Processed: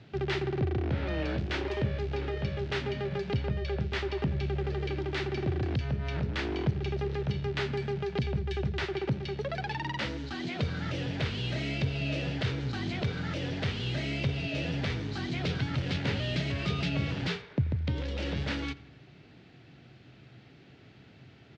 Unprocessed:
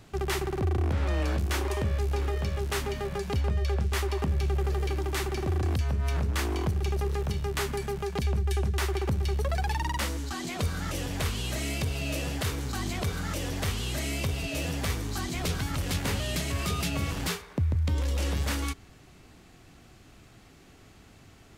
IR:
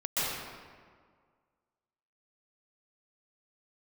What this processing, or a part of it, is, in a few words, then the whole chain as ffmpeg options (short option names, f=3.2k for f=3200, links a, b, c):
guitar cabinet: -filter_complex "[0:a]asettb=1/sr,asplit=3[a][b][c];[a]atrim=end=8.834[d];[b]atrim=start=8.83:end=10.05,asetpts=PTS-STARTPTS,afade=t=in:d=0.004:c=qsin,afade=t=out:st=1.216:d=0.004:c=qsin,highpass=120[e];[c]atrim=start=10.046[f];[d][e]acrossfade=d=0.004:c1=hsin:c2=qsin[g];[g][f]acrossfade=d=0.004:c1=qsin:c2=hsin,highpass=110,equalizer=f=130:t=q:w=4:g=9,equalizer=f=770:t=q:w=4:g=-3,equalizer=f=1.1k:t=q:w=4:g=-9,lowpass=f=4.3k:w=0.5412,lowpass=f=4.3k:w=1.3066,asplit=2[h][i];[i]adelay=85,lowpass=f=4.6k:p=1,volume=-20.5dB,asplit=2[j][k];[k]adelay=85,lowpass=f=4.6k:p=1,volume=0.5,asplit=2[l][m];[m]adelay=85,lowpass=f=4.6k:p=1,volume=0.5,asplit=2[n][o];[o]adelay=85,lowpass=f=4.6k:p=1,volume=0.5[p];[h][j][l][n][p]amix=inputs=5:normalize=0"